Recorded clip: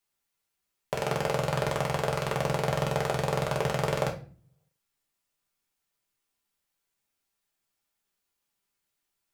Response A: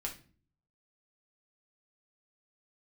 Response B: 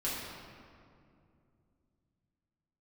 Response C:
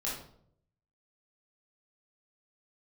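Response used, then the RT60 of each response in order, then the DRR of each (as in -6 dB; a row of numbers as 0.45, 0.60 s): A; 0.40, 2.5, 0.65 s; -1.0, -8.5, -6.5 dB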